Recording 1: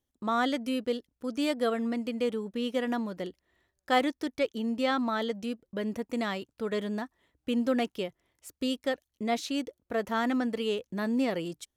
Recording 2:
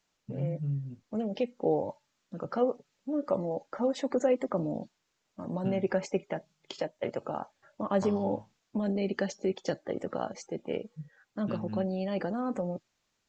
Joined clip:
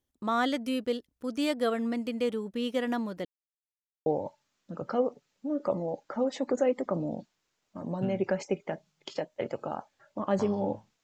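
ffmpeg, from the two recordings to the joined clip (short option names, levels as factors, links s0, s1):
-filter_complex "[0:a]apad=whole_dur=11.03,atrim=end=11.03,asplit=2[s0][s1];[s0]atrim=end=3.25,asetpts=PTS-STARTPTS,afade=t=out:st=3.246:d=0.004:c=hsin[s2];[s1]atrim=start=3.25:end=4.06,asetpts=PTS-STARTPTS,volume=0[s3];[1:a]atrim=start=1.69:end=8.66,asetpts=PTS-STARTPTS,afade=t=in:d=0.004:c=hsin[s4];[s2][s3][s4]concat=n=3:v=0:a=1"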